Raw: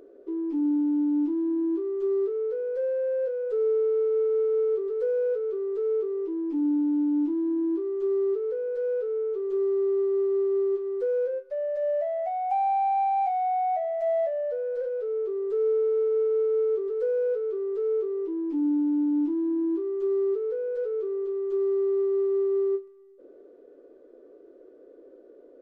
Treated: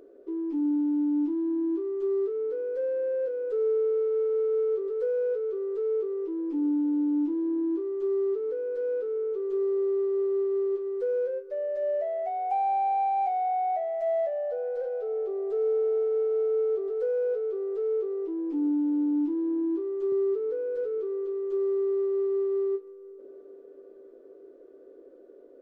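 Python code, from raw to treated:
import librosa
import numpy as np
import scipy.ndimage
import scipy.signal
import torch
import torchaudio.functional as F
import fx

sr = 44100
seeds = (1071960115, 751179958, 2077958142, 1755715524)

y = fx.peak_eq(x, sr, hz=120.0, db=12.0, octaves=1.1, at=(20.12, 20.98))
y = fx.echo_wet_bandpass(y, sr, ms=454, feedback_pct=77, hz=780.0, wet_db=-23.5)
y = y * librosa.db_to_amplitude(-1.5)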